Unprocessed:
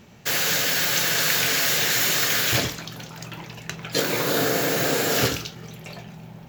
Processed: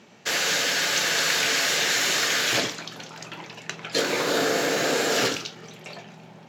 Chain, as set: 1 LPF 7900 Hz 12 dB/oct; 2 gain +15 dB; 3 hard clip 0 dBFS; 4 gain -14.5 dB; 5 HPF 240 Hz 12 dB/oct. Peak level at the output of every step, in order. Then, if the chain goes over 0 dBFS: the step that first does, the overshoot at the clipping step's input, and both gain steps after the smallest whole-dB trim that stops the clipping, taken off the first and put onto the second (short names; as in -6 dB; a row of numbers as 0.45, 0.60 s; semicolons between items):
-8.5, +6.5, 0.0, -14.5, -10.0 dBFS; step 2, 6.5 dB; step 2 +8 dB, step 4 -7.5 dB